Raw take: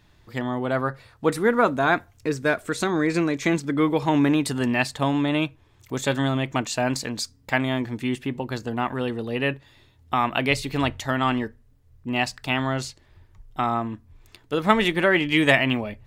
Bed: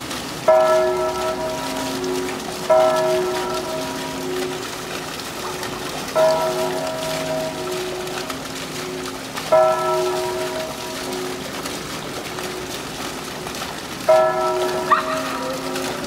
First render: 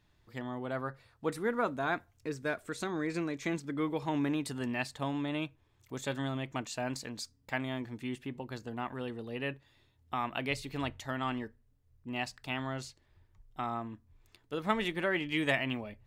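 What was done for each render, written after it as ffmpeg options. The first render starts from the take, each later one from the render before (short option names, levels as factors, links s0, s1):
-af "volume=0.251"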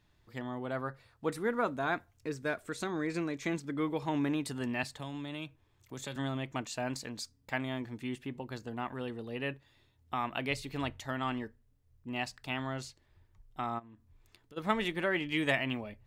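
-filter_complex "[0:a]asettb=1/sr,asplit=3[s0][s1][s2];[s0]atrim=end=4.834[s3];[s1]atrim=start=4.83:end=6.16,asetpts=PTS-STARTPTS,afade=t=in:d=0.004:c=qsin,afade=t=out:st=1.326:d=0.004:c=qsin,acrossover=split=120|3000[s4][s5][s6];[s5]acompressor=threshold=0.01:ratio=3:attack=3.2:release=140:knee=2.83:detection=peak[s7];[s4][s7][s6]amix=inputs=3:normalize=0[s8];[s2]atrim=start=6.156[s9];[s3][s8]acrossfade=d=0.004:c1=hsin:c2=qsin[s10];[s10][s9]acrossfade=d=0.004:c1=qsin:c2=hsin,asplit=3[s11][s12][s13];[s11]afade=t=out:st=13.78:d=0.02[s14];[s12]acompressor=threshold=0.00282:ratio=8:attack=3.2:release=140:knee=1:detection=peak,afade=t=in:st=13.78:d=0.02,afade=t=out:st=14.56:d=0.02[s15];[s13]afade=t=in:st=14.56:d=0.02[s16];[s14][s15][s16]amix=inputs=3:normalize=0"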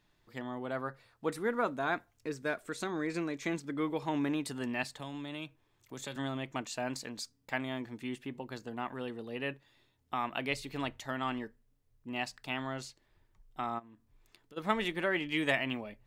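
-af "equalizer=f=74:w=1.3:g=-13"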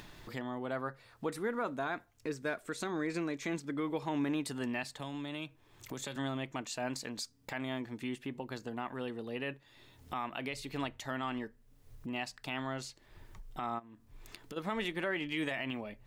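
-af "acompressor=mode=upward:threshold=0.0158:ratio=2.5,alimiter=level_in=1.12:limit=0.0631:level=0:latency=1:release=74,volume=0.891"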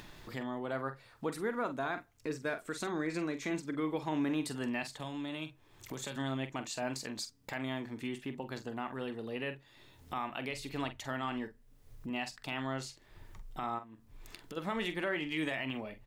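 -filter_complex "[0:a]asplit=2[s0][s1];[s1]adelay=45,volume=0.299[s2];[s0][s2]amix=inputs=2:normalize=0"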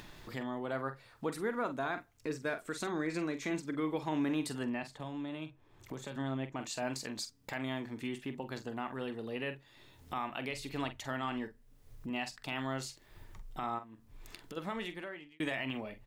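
-filter_complex "[0:a]asettb=1/sr,asplit=3[s0][s1][s2];[s0]atrim=end=4.634[s3];[s1]atrim=start=4.63:end=6.6,asetpts=PTS-STARTPTS,afade=t=in:d=0.004:c=qsin,afade=t=out:st=1.966:d=0.004:c=qsin,highshelf=f=2300:g=-10[s4];[s2]atrim=start=6.596[s5];[s3][s4]acrossfade=d=0.004:c1=hsin:c2=qsin[s6];[s6][s5]acrossfade=d=0.004:c1=qsin:c2=hsin,asettb=1/sr,asplit=3[s7][s8][s9];[s7]atrim=end=12.554[s10];[s8]atrim=start=12.55:end=13.25,asetpts=PTS-STARTPTS,afade=t=in:d=0.004:c=qsin,afade=t=out:st=0.696:d=0.004:c=qsin,highshelf=f=9900:g=8[s11];[s9]atrim=start=13.246[s12];[s10][s11]acrossfade=d=0.004:c1=hsin:c2=qsin[s13];[s13][s12]acrossfade=d=0.004:c1=qsin:c2=hsin,asplit=2[s14][s15];[s14]atrim=end=15.4,asetpts=PTS-STARTPTS,afade=t=out:st=14.45:d=0.95[s16];[s15]atrim=start=15.4,asetpts=PTS-STARTPTS,afade=t=in:d=0.004:c=hsin[s17];[s16][s17]concat=n=2:v=0:a=1"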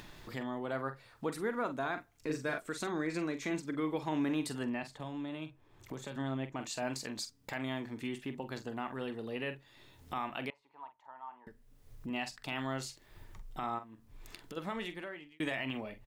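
-filter_complex "[0:a]asplit=3[s0][s1][s2];[s0]afade=t=out:st=2.12:d=0.02[s3];[s1]asplit=2[s4][s5];[s5]adelay=39,volume=0.631[s6];[s4][s6]amix=inputs=2:normalize=0,afade=t=in:st=2.12:d=0.02,afade=t=out:st=2.58:d=0.02[s7];[s2]afade=t=in:st=2.58:d=0.02[s8];[s3][s7][s8]amix=inputs=3:normalize=0,asettb=1/sr,asplit=3[s9][s10][s11];[s9]atrim=end=10.504[s12];[s10]atrim=start=10.5:end=11.47,asetpts=PTS-STARTPTS,afade=t=in:d=0.004:c=qsin,afade=t=out:st=0.966:d=0.004:c=qsin,bandpass=f=930:t=q:w=9.1[s13];[s11]atrim=start=11.466[s14];[s12][s13]acrossfade=d=0.004:c1=hsin:c2=qsin[s15];[s15][s14]acrossfade=d=0.004:c1=qsin:c2=hsin"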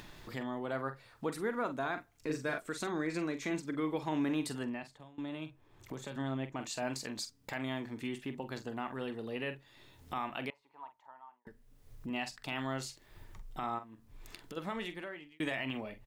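-filter_complex "[0:a]asplit=3[s0][s1][s2];[s0]atrim=end=5.18,asetpts=PTS-STARTPTS,afade=t=out:st=4.53:d=0.65:silence=0.0891251[s3];[s1]atrim=start=5.18:end=11.45,asetpts=PTS-STARTPTS,afade=t=in:d=0.004:c=hsin:silence=0.0891251,afade=t=out:st=5.81:d=0.46[s4];[s2]atrim=start=11.45,asetpts=PTS-STARTPTS,afade=t=in:d=0.004:c=hsin[s5];[s3][s4][s5]concat=n=3:v=0:a=1"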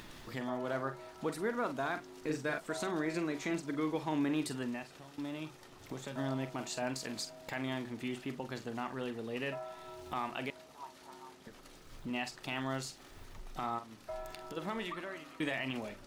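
-filter_complex "[1:a]volume=0.0335[s0];[0:a][s0]amix=inputs=2:normalize=0"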